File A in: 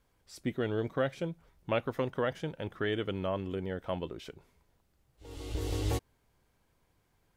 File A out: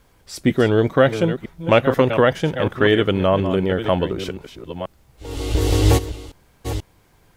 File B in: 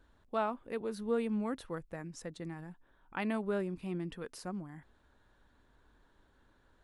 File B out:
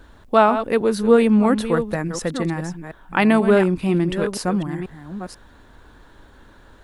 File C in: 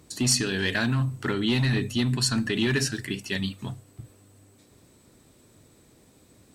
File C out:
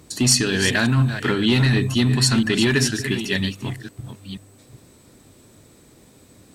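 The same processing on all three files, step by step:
chunks repeated in reverse 486 ms, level -10 dB; normalise loudness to -19 LUFS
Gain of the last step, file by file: +16.0 dB, +19.0 dB, +6.0 dB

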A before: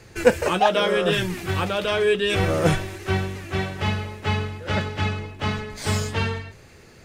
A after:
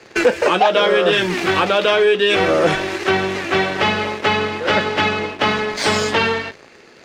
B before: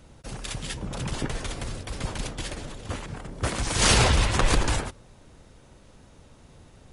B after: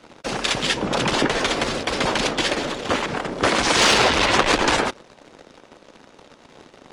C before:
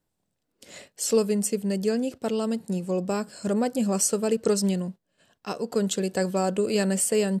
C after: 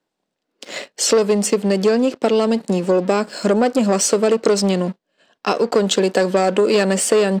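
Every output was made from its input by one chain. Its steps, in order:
treble shelf 12 kHz -3 dB; waveshaping leveller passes 2; three-band isolator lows -21 dB, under 220 Hz, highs -15 dB, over 6.2 kHz; compression 2.5:1, threshold -25 dBFS; peak normalisation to -2 dBFS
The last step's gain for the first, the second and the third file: +9.0 dB, +9.0 dB, +10.5 dB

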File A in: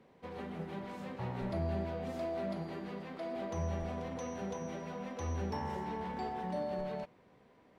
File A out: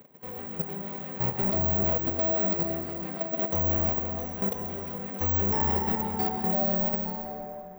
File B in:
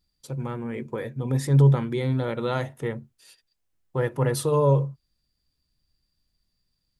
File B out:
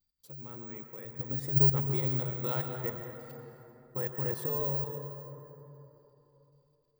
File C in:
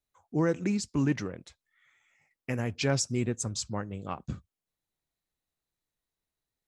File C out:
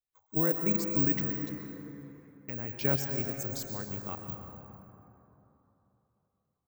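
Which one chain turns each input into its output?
careless resampling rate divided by 2×, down none, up zero stuff; level held to a coarse grid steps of 12 dB; plate-style reverb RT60 3.4 s, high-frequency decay 0.45×, pre-delay 100 ms, DRR 4 dB; peak normalisation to -12 dBFS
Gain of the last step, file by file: +9.5 dB, -8.0 dB, -1.5 dB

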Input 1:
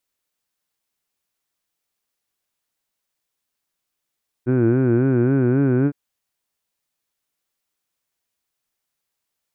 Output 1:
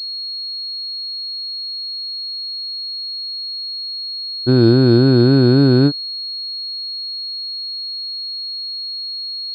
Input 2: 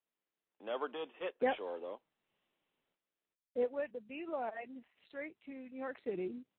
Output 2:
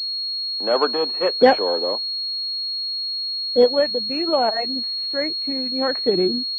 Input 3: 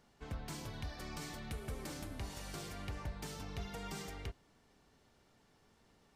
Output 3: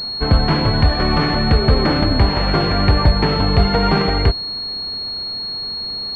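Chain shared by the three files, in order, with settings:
class-D stage that switches slowly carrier 4.3 kHz; peak normalisation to -2 dBFS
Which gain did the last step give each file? +6.0 dB, +19.5 dB, +29.5 dB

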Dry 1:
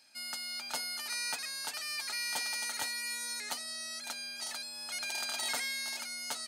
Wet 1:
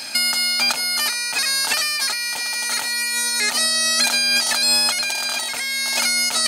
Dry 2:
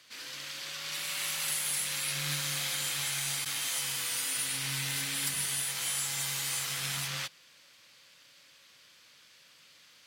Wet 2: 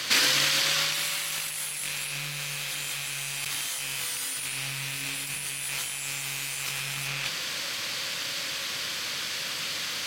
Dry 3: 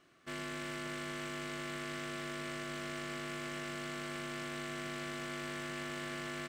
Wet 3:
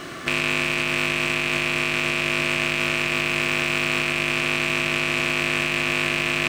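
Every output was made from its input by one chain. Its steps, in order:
rattle on loud lows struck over -52 dBFS, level -24 dBFS; compressor with a negative ratio -46 dBFS, ratio -1; peak normalisation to -6 dBFS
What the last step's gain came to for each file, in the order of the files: +24.5 dB, +15.0 dB, +23.0 dB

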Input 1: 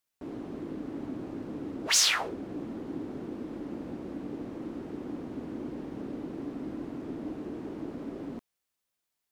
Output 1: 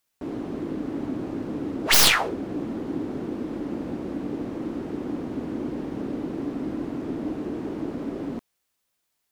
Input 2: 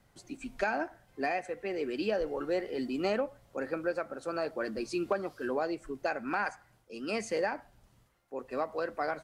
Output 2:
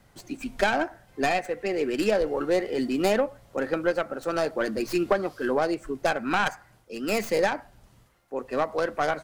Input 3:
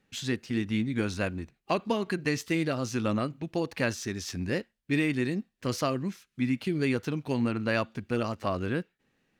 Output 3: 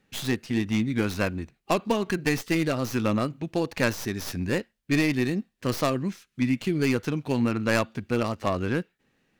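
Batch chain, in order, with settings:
tracing distortion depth 0.13 ms; normalise loudness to -27 LUFS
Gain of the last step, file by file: +7.5 dB, +7.5 dB, +3.5 dB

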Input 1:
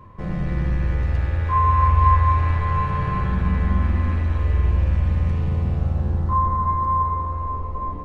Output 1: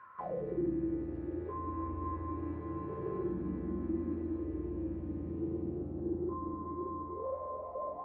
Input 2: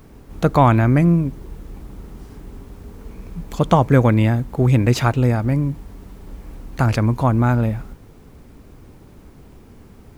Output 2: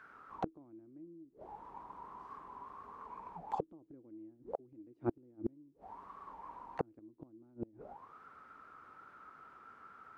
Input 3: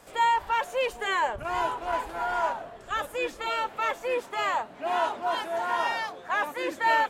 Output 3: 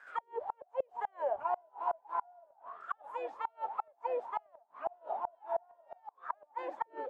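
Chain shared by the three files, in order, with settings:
in parallel at -1.5 dB: compression 12:1, threshold -30 dBFS; on the sum: auto-wah 320–1600 Hz, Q 15, down, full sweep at -15.5 dBFS; Chebyshev shaper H 2 -32 dB, 3 -44 dB, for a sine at -17 dBFS; inverted gate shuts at -31 dBFS, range -34 dB; trim +9 dB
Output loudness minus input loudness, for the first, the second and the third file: -17.0 LU, -30.5 LU, -11.0 LU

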